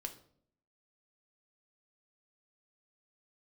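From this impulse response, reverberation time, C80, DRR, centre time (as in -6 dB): 0.60 s, 16.5 dB, 4.5 dB, 10 ms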